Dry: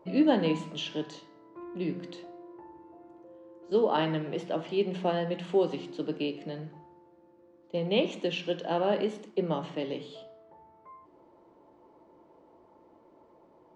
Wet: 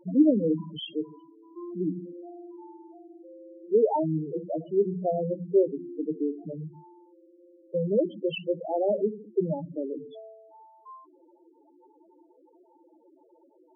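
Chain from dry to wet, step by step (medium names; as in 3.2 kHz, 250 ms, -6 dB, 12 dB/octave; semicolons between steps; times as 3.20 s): dynamic bell 3.6 kHz, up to +3 dB, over -54 dBFS, Q 7.5; loudest bins only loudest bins 4; trim +4.5 dB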